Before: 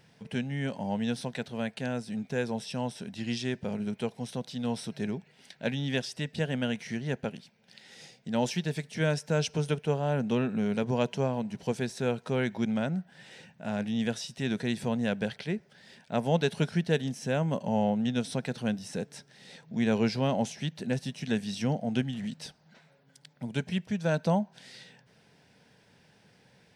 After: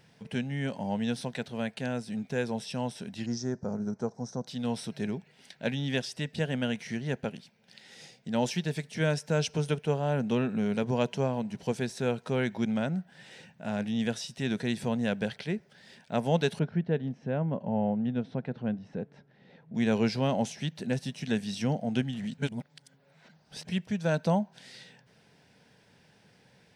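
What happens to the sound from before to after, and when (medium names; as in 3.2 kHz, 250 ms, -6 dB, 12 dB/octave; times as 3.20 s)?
3.26–4.47 s: FFT filter 1.4 kHz 0 dB, 2.9 kHz -29 dB, 6 kHz +6 dB, 10 kHz -20 dB
16.59–19.75 s: tape spacing loss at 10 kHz 44 dB
22.38–23.65 s: reverse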